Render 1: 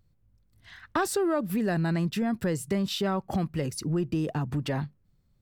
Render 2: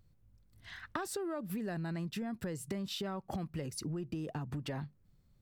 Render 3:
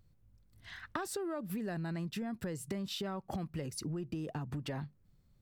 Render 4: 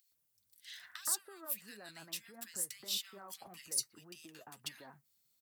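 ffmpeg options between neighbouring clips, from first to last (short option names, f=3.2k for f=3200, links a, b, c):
-af "acompressor=threshold=-37dB:ratio=5"
-af anull
-filter_complex "[0:a]aderivative,flanger=delay=3.1:depth=6.7:regen=50:speed=1.7:shape=sinusoidal,acrossover=split=1600[a][b];[a]adelay=120[c];[c][b]amix=inputs=2:normalize=0,volume=13.5dB"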